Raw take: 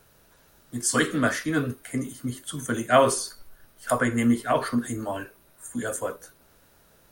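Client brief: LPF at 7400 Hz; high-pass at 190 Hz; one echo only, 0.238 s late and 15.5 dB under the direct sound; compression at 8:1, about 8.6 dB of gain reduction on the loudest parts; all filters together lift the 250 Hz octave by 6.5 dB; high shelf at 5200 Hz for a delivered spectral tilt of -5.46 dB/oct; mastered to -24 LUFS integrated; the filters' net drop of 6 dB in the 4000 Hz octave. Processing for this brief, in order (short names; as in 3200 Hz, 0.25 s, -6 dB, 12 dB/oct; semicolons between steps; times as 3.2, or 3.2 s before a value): HPF 190 Hz; LPF 7400 Hz; bell 250 Hz +8.5 dB; bell 4000 Hz -5 dB; high shelf 5200 Hz -7 dB; compressor 8:1, threshold -19 dBFS; echo 0.238 s -15.5 dB; gain +3 dB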